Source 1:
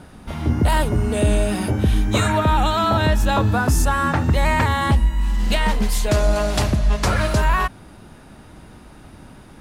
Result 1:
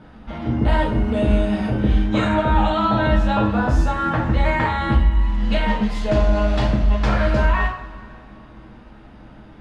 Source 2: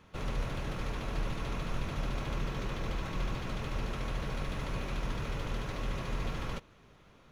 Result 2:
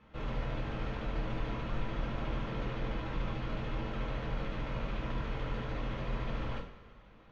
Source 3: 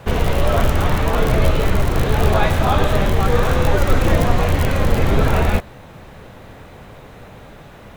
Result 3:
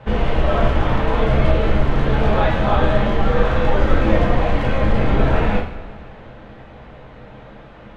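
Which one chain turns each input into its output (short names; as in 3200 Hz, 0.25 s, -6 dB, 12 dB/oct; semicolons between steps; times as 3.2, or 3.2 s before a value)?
LPF 3000 Hz 12 dB/oct; two-slope reverb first 0.45 s, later 2.4 s, from -18 dB, DRR -2 dB; gain -4.5 dB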